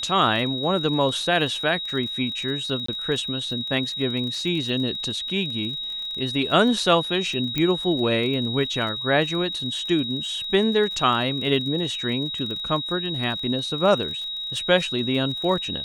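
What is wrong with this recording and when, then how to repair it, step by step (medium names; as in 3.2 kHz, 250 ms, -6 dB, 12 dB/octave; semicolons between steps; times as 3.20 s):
crackle 29 per s -31 dBFS
whine 3.8 kHz -28 dBFS
2.86–2.88 s: dropout 24 ms
7.58 s: pop -10 dBFS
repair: de-click; band-stop 3.8 kHz, Q 30; interpolate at 2.86 s, 24 ms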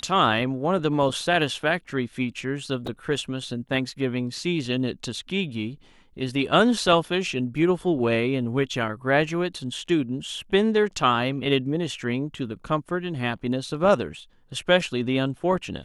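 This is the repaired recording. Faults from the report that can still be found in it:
7.58 s: pop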